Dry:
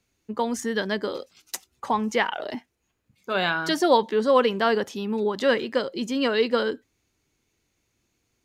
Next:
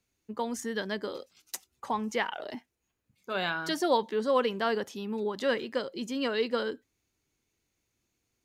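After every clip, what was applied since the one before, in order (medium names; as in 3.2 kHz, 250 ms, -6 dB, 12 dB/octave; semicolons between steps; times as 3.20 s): treble shelf 8.2 kHz +4.5 dB; trim -7 dB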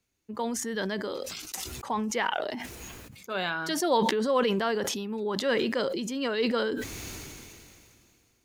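decay stretcher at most 24 dB/s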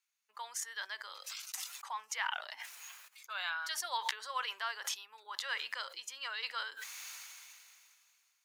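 high-pass 1 kHz 24 dB/octave; trim -5 dB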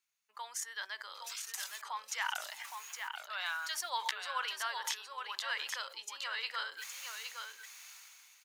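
delay 816 ms -6 dB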